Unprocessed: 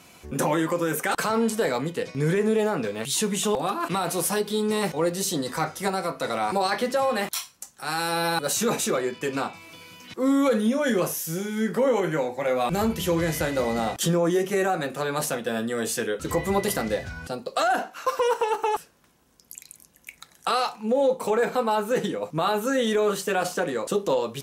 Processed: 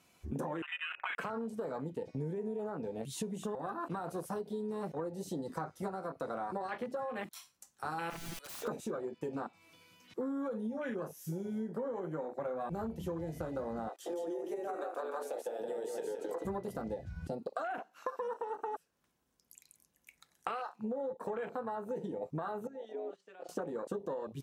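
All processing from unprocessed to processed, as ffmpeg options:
-filter_complex "[0:a]asettb=1/sr,asplit=3[a][b][c];[a]atrim=end=0.624[d];[b]atrim=start=0.62:end=1.18,asetpts=PTS-STARTPTS,afade=t=in:d=0.004:c=qsin,afade=t=out:st=0.556:d=0.004:c=qsin,highpass=f=650:p=1,lowpass=f=2.6k:t=q:w=0.5098,lowpass=f=2.6k:t=q:w=0.6013,lowpass=f=2.6k:t=q:w=0.9,lowpass=f=2.6k:t=q:w=2.563,afreqshift=-3000[e];[c]atrim=start=1.176[f];[d][e]acrossfade=d=0.004:c1=hsin:c2=qsin[g];[g][f]acrossfade=d=0.004:c1=qsin:c2=hsin,asettb=1/sr,asplit=3[h][i][j];[h]atrim=end=8.104[k];[i]atrim=start=8.1:end=8.68,asetpts=PTS-STARTPTS,afade=t=in:d=0.004:c=qsin,afade=t=out:st=0.576:d=0.004:c=qsin,highpass=870,aeval=exprs='(mod(16.8*val(0)+1,2)-1)/16.8':c=same[l];[j]atrim=start=8.676[m];[k][l]acrossfade=d=0.004:c1=hsin:c2=qsin[n];[n][m]acrossfade=d=0.004:c1=qsin:c2=hsin,asettb=1/sr,asplit=3[o][p][q];[o]atrim=end=13.894[r];[p]atrim=start=13.89:end=16.45,asetpts=PTS-STARTPTS,afade=t=in:d=0.004:c=qsin,afade=t=out:st=2.556:d=0.004:c=qsin,highpass=f=370:w=0.5412,highpass=f=370:w=1.3066,acompressor=threshold=-27dB:ratio=6:attack=3.2:release=140:knee=1:detection=peak,aecho=1:1:170:0.668,atrim=end_sample=112896[s];[q]atrim=start=16.446[t];[r][s]acrossfade=d=0.004:c1=hsin:c2=qsin[u];[u][t]acrossfade=d=0.004:c1=qsin:c2=hsin,asettb=1/sr,asplit=3[v][w][x];[v]atrim=end=22.674[y];[w]atrim=start=22.67:end=23.49,asetpts=PTS-STARTPTS,afade=t=in:d=0.004:c=qsin,afade=t=out:st=0.816:d=0.004:c=qsin,agate=range=-16dB:threshold=-29dB:ratio=16:release=100:detection=peak,acompressor=threshold=-40dB:ratio=3:attack=3.2:release=140:knee=1:detection=peak,highpass=270,lowpass=4.3k[z];[x]atrim=start=23.486[aa];[y][z]acrossfade=d=0.004:c1=hsin:c2=qsin[ab];[ab][aa]acrossfade=d=0.004:c1=qsin:c2=hsin,afwtdn=0.0398,acompressor=threshold=-35dB:ratio=12"

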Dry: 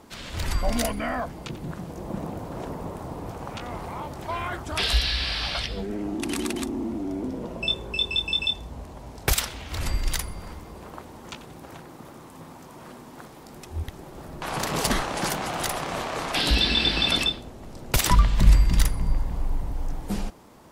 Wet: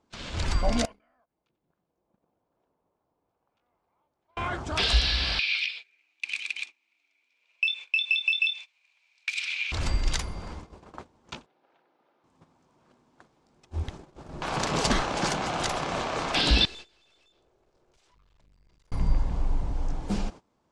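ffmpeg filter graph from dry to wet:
-filter_complex "[0:a]asettb=1/sr,asplit=3[a][b][c];[a]atrim=end=0.854[d];[b]atrim=start=0.85:end=4.37,asetpts=PTS-STARTPTS,afade=t=in:d=0.004:c=qsin,afade=t=out:st=3.516:d=0.004:c=qsin,agate=range=-19dB:threshold=-29dB:ratio=16:release=100:detection=peak,bass=f=250:g=-9,treble=f=4k:g=-5,acompressor=threshold=-45dB:ratio=8:attack=3.2:release=140:knee=1:detection=peak[e];[c]atrim=start=4.366[f];[d][e]acrossfade=d=0.004:c1=hsin:c2=qsin[g];[g][f]acrossfade=d=0.004:c1=qsin:c2=hsin,asettb=1/sr,asplit=3[h][i][j];[h]atrim=end=5.394[k];[i]atrim=start=5.39:end=9.72,asetpts=PTS-STARTPTS,afade=t=in:d=0.004:c=qsin,afade=t=out:st=4.326:d=0.004:c=qsin,acompressor=threshold=-33dB:ratio=12:attack=3.2:release=140:knee=1:detection=peak,highpass=f=2.4k:t=q:w=14,equalizer=f=4k:w=2.7:g=5[l];[j]atrim=start=9.716[m];[k][l]acrossfade=d=0.004:c1=hsin:c2=qsin[n];[n][m]acrossfade=d=0.004:c1=qsin:c2=hsin,asettb=1/sr,asplit=3[o][p][q];[o]atrim=end=11.464[r];[p]atrim=start=11.46:end=12.24,asetpts=PTS-STARTPTS,afade=t=in:d=0.004:c=qsin,afade=t=out:st=0.776:d=0.004:c=qsin,highpass=190,lowpass=7.3k,acrossover=split=360 4400:gain=0.2 1 0.0794[s][t][u];[s][t][u]amix=inputs=3:normalize=0,bandreject=f=1.1k:w=9.2[v];[q]atrim=start=12.236[w];[r][v]acrossfade=d=0.004:c1=hsin:c2=qsin[x];[x][w]acrossfade=d=0.004:c1=qsin:c2=hsin,asettb=1/sr,asplit=3[y][z][aa];[y]atrim=end=16.654[ab];[z]atrim=start=16.65:end=18.92,asetpts=PTS-STARTPTS,afade=t=in:d=0.004:c=qsin,afade=t=out:st=2.266:d=0.004:c=qsin,lowshelf=f=310:t=q:w=3:g=-6,acompressor=threshold=-33dB:ratio=4:attack=3.2:release=140:knee=1:detection=peak,aeval=exprs='(tanh(126*val(0)+0.55)-tanh(0.55))/126':c=same[ac];[aa]atrim=start=18.916[ad];[ab][ac]acrossfade=d=0.004:c1=hsin:c2=qsin[ae];[ae][ad]acrossfade=d=0.004:c1=qsin:c2=hsin,lowpass=f=7.6k:w=0.5412,lowpass=f=7.6k:w=1.3066,bandreject=f=1.9k:w=17,agate=range=-21dB:threshold=-39dB:ratio=16:detection=peak"

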